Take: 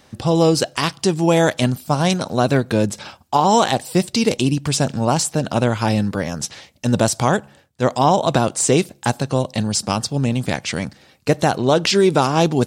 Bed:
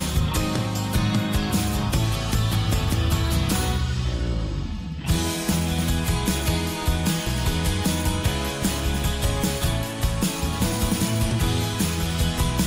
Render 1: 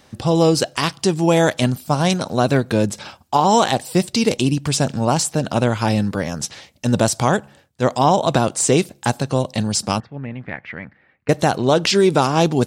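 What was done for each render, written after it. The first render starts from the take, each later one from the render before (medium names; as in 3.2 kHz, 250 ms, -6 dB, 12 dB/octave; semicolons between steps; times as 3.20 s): 10.00–11.29 s: four-pole ladder low-pass 2.2 kHz, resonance 60%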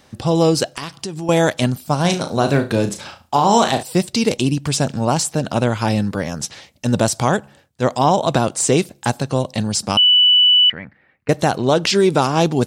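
0.70–1.29 s: compression 5:1, threshold -24 dBFS; 2.01–3.83 s: flutter echo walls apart 6 m, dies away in 0.27 s; 9.97–10.70 s: bleep 2.97 kHz -8.5 dBFS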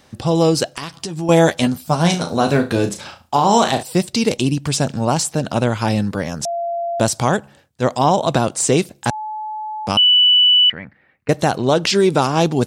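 0.92–2.89 s: doubling 12 ms -6 dB; 6.45–7.00 s: bleep 685 Hz -19.5 dBFS; 9.10–9.87 s: bleep 860 Hz -24 dBFS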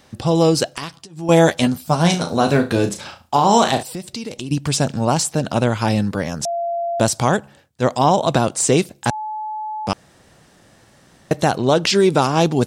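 0.85–1.33 s: dip -20.5 dB, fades 0.24 s; 3.91–4.51 s: compression 4:1, threshold -27 dBFS; 9.93–11.31 s: room tone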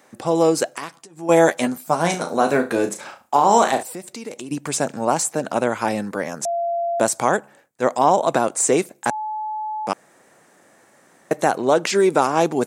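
high-pass 300 Hz 12 dB/octave; high-order bell 3.9 kHz -8.5 dB 1.2 oct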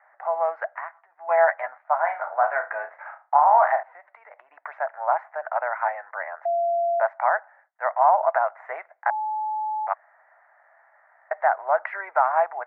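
Chebyshev band-pass 640–2000 Hz, order 4; band-stop 1.1 kHz, Q 22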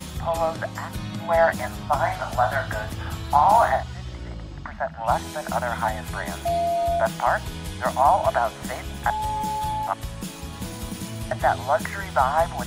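add bed -10 dB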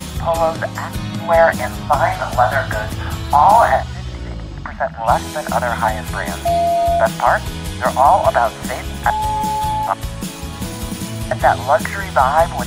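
trim +7.5 dB; peak limiter -1 dBFS, peak gain reduction 3 dB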